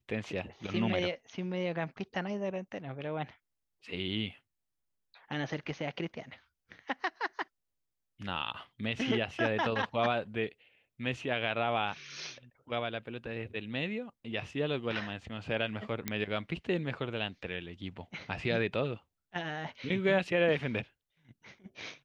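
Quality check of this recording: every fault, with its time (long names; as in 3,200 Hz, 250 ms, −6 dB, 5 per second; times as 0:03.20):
0:16.08: click −15 dBFS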